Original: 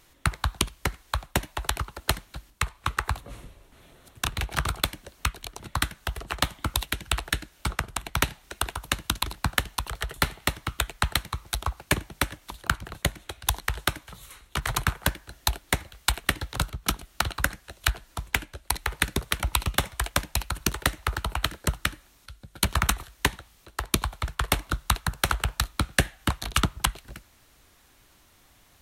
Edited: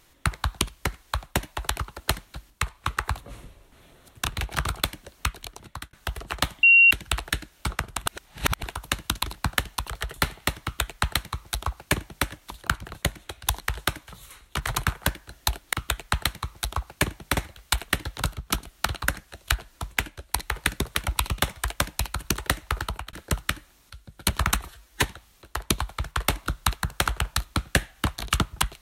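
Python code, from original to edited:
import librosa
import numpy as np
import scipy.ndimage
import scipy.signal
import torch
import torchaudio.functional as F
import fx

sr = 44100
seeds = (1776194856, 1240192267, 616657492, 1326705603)

y = fx.edit(x, sr, fx.fade_out_span(start_s=5.44, length_s=0.49),
    fx.bleep(start_s=6.63, length_s=0.28, hz=2750.0, db=-11.0),
    fx.reverse_span(start_s=8.06, length_s=0.57),
    fx.duplicate(start_s=10.63, length_s=1.64, to_s=15.73),
    fx.fade_out_span(start_s=21.23, length_s=0.26),
    fx.stretch_span(start_s=23.01, length_s=0.25, factor=1.5), tone=tone)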